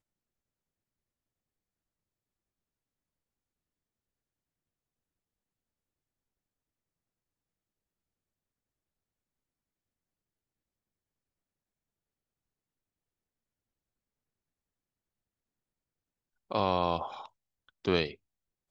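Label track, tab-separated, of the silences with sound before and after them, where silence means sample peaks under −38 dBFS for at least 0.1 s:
17.260000	17.850000	silence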